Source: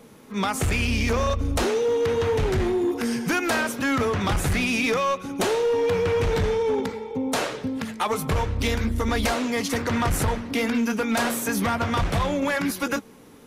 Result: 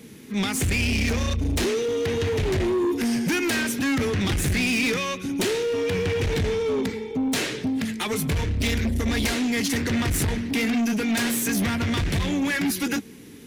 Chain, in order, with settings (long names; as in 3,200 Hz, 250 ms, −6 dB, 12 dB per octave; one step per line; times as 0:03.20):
high-pass filter 44 Hz 12 dB per octave
flat-topped bell 830 Hz −12.5 dB
soft clipping −25.5 dBFS, distortion −11 dB
level +6 dB